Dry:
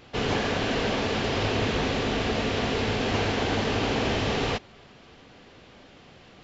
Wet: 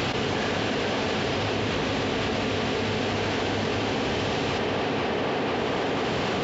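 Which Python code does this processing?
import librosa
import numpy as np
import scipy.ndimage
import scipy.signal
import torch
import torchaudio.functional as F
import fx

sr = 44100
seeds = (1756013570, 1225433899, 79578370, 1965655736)

p1 = scipy.signal.sosfilt(scipy.signal.butter(2, 77.0, 'highpass', fs=sr, output='sos'), x)
p2 = p1 + fx.echo_tape(p1, sr, ms=492, feedback_pct=58, wet_db=-8.0, lp_hz=3200.0, drive_db=15.0, wow_cents=38, dry=0)
p3 = fx.env_flatten(p2, sr, amount_pct=100)
y = p3 * 10.0 ** (-3.5 / 20.0)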